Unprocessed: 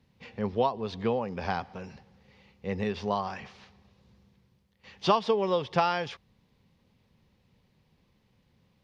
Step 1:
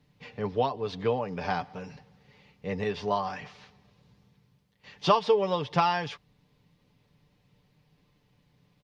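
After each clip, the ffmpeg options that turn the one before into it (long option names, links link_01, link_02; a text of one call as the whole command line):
ffmpeg -i in.wav -af "aecho=1:1:6.8:0.58" out.wav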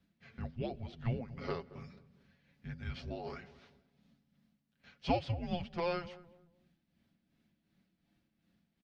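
ffmpeg -i in.wav -filter_complex "[0:a]tremolo=f=2.7:d=0.61,asplit=2[link_01][link_02];[link_02]adelay=225,lowpass=frequency=830:poles=1,volume=-14.5dB,asplit=2[link_03][link_04];[link_04]adelay=225,lowpass=frequency=830:poles=1,volume=0.37,asplit=2[link_05][link_06];[link_06]adelay=225,lowpass=frequency=830:poles=1,volume=0.37[link_07];[link_01][link_03][link_05][link_07]amix=inputs=4:normalize=0,afreqshift=-340,volume=-7.5dB" out.wav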